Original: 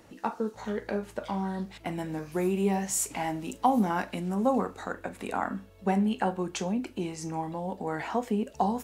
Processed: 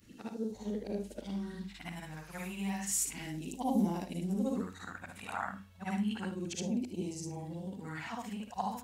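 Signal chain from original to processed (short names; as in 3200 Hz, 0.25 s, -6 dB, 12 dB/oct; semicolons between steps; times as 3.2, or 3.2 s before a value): short-time reversal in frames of 0.153 s; phaser stages 2, 0.32 Hz, lowest notch 340–1400 Hz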